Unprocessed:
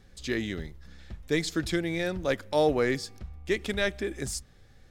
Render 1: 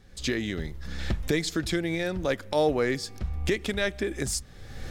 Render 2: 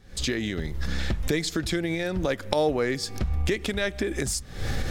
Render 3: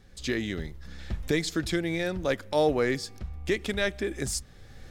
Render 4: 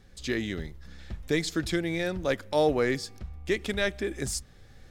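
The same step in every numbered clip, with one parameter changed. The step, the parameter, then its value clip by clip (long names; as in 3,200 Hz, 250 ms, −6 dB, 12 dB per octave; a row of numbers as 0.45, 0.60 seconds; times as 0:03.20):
camcorder AGC, rising by: 31, 85, 13, 5 dB per second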